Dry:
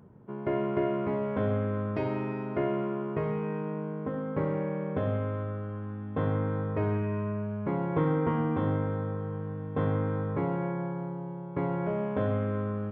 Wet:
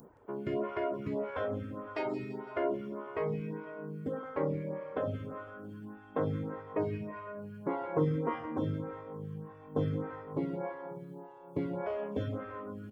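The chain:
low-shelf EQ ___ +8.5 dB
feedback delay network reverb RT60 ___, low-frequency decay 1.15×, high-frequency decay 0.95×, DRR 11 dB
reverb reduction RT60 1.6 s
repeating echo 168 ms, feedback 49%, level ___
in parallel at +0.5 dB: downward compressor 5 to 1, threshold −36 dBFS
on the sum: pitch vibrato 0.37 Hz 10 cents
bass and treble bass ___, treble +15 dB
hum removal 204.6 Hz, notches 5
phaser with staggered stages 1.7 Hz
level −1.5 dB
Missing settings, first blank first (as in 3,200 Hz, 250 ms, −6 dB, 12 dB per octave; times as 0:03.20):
220 Hz, 0.87 s, −13 dB, −10 dB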